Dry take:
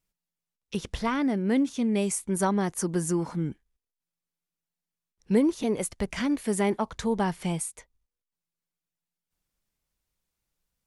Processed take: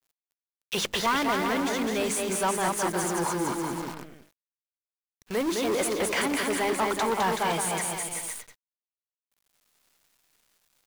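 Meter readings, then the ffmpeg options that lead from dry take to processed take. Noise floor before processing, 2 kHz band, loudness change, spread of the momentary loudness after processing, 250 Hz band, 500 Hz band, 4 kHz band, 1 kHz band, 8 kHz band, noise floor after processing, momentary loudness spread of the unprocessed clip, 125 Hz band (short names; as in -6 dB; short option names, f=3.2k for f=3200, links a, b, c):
under -85 dBFS, +8.0 dB, +0.5 dB, 8 LU, -4.5 dB, +1.5 dB, +9.5 dB, +6.5 dB, +5.0 dB, under -85 dBFS, 8 LU, -6.0 dB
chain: -filter_complex "[0:a]bandreject=f=5.5k:w=22,areverse,acompressor=threshold=-33dB:ratio=8,areverse,bandreject=f=50:t=h:w=6,bandreject=f=100:t=h:w=6,bandreject=f=150:t=h:w=6,bandreject=f=200:t=h:w=6,bandreject=f=250:t=h:w=6,bandreject=f=300:t=h:w=6,bandreject=f=350:t=h:w=6,asplit=2[a][b];[b]aecho=0:1:210|378|512.4|619.9|705.9:0.631|0.398|0.251|0.158|0.1[c];[a][c]amix=inputs=2:normalize=0,asplit=2[d][e];[e]highpass=f=720:p=1,volume=21dB,asoftclip=type=tanh:threshold=-21.5dB[f];[d][f]amix=inputs=2:normalize=0,lowpass=f=4.7k:p=1,volume=-6dB,lowshelf=f=370:g=-9.5,acrusher=bits=8:dc=4:mix=0:aa=0.000001,adynamicequalizer=threshold=0.00447:dfrequency=1500:dqfactor=0.7:tfrequency=1500:tqfactor=0.7:attack=5:release=100:ratio=0.375:range=2:mode=cutabove:tftype=highshelf,volume=8dB"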